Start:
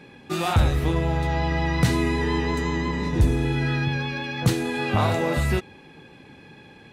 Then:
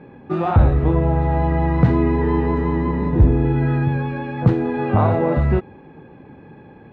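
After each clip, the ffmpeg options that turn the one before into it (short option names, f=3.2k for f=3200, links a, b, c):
-af "lowpass=1.1k,volume=6dB"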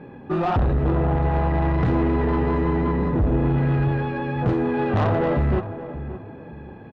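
-filter_complex "[0:a]asoftclip=type=tanh:threshold=-18dB,bandreject=f=2.2k:w=19,asplit=2[a][b];[b]adelay=573,lowpass=f=1.3k:p=1,volume=-12dB,asplit=2[c][d];[d]adelay=573,lowpass=f=1.3k:p=1,volume=0.32,asplit=2[e][f];[f]adelay=573,lowpass=f=1.3k:p=1,volume=0.32[g];[a][c][e][g]amix=inputs=4:normalize=0,volume=1.5dB"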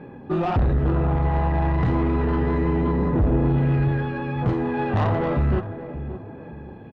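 -af "aphaser=in_gain=1:out_gain=1:delay=1.2:decay=0.22:speed=0.31:type=triangular,volume=-1.5dB"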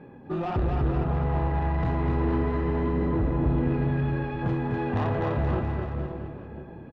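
-af "aecho=1:1:250|475|677.5|859.8|1024:0.631|0.398|0.251|0.158|0.1,volume=-6.5dB"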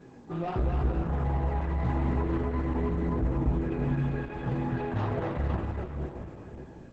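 -af "flanger=delay=15.5:depth=2.1:speed=1.5,acrusher=bits=10:mix=0:aa=0.000001" -ar 48000 -c:a libopus -b:a 10k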